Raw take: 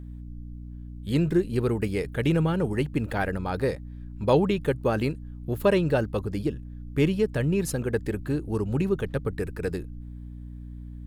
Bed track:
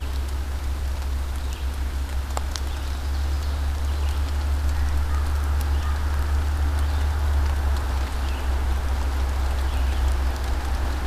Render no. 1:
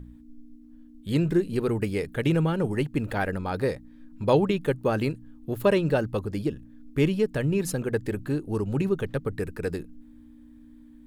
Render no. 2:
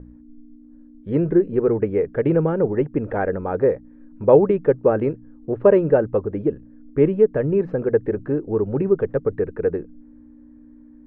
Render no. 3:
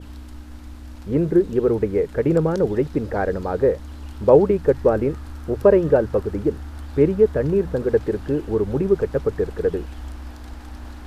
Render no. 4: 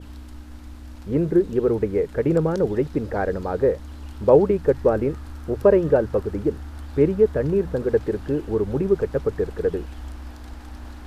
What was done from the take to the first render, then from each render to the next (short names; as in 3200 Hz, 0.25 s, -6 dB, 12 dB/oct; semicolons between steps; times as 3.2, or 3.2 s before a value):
de-hum 60 Hz, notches 3
LPF 1900 Hz 24 dB/oct; bell 470 Hz +10.5 dB 1.2 oct
add bed track -12 dB
gain -1.5 dB